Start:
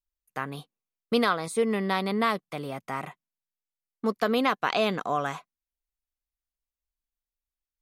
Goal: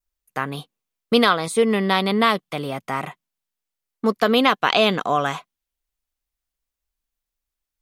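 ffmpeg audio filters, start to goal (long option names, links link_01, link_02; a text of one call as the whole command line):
ffmpeg -i in.wav -af "adynamicequalizer=threshold=0.00501:dfrequency=3200:dqfactor=2.7:tfrequency=3200:tqfactor=2.7:attack=5:release=100:ratio=0.375:range=3:mode=boostabove:tftype=bell,volume=7dB" out.wav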